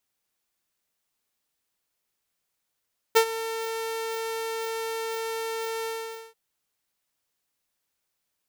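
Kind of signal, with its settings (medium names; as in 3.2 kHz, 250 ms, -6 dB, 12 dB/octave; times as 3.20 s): ADSR saw 451 Hz, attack 16 ms, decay 82 ms, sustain -15.5 dB, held 2.71 s, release 479 ms -11 dBFS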